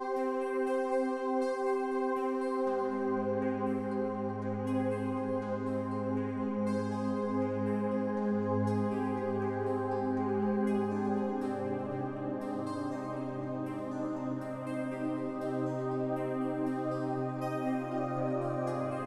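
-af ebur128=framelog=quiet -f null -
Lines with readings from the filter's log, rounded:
Integrated loudness:
  I:         -33.7 LUFS
  Threshold: -43.7 LUFS
Loudness range:
  LRA:         4.0 LU
  Threshold: -53.8 LUFS
  LRA low:   -36.4 LUFS
  LRA high:  -32.3 LUFS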